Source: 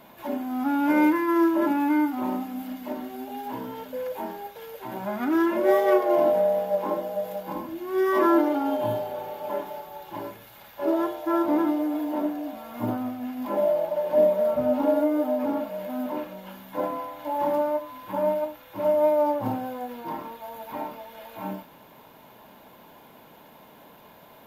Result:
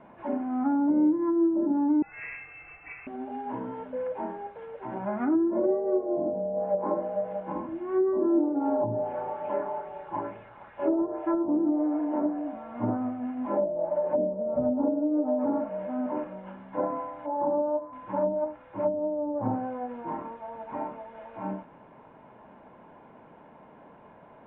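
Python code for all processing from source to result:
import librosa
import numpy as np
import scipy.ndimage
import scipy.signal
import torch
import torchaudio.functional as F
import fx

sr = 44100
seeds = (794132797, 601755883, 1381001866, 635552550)

y = fx.chain(x, sr, fx.low_shelf(hz=390.0, db=-7.5),
    fx.freq_invert(carrier_hz=2900), at=(2.02, 3.07))
y = fx.chain(y, sr, fx.echo_wet_bandpass(ms=64, feedback_pct=69, hz=600.0, wet_db=-13.0),
    fx.bell_lfo(hz=2.3, low_hz=940.0, high_hz=2800.0, db=7), at=(8.42, 11.57))
y = fx.chain(y, sr, fx.lowpass(hz=1000.0, slope=12),
    fx.low_shelf(hz=110.0, db=-8.5), at=(17.26, 17.93))
y = fx.env_lowpass_down(y, sr, base_hz=370.0, full_db=-18.5)
y = scipy.signal.sosfilt(scipy.signal.bessel(8, 1500.0, 'lowpass', norm='mag', fs=sr, output='sos'), y)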